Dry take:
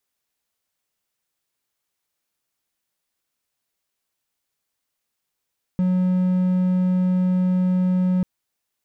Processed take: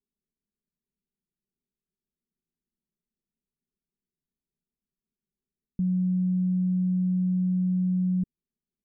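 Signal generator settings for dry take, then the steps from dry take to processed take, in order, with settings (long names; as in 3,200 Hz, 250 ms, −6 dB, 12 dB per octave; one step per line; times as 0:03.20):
tone triangle 183 Hz −14.5 dBFS 2.44 s
inverse Chebyshev low-pass filter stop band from 890 Hz, stop band 50 dB
comb filter 4.9 ms, depth 93%
brickwall limiter −21.5 dBFS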